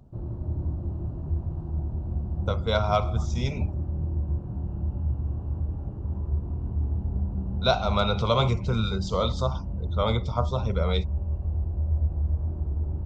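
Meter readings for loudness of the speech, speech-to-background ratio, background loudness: -27.5 LUFS, 3.0 dB, -30.5 LUFS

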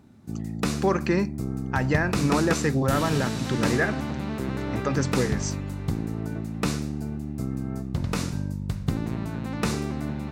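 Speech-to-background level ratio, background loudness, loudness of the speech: 2.5 dB, -29.5 LUFS, -27.0 LUFS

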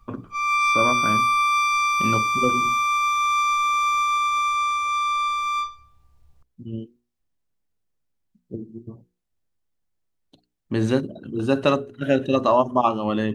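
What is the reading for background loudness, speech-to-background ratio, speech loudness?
-20.5 LUFS, -3.5 dB, -24.0 LUFS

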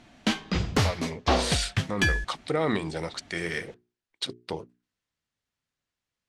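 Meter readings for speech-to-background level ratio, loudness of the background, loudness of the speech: -4.5 dB, -27.5 LUFS, -32.0 LUFS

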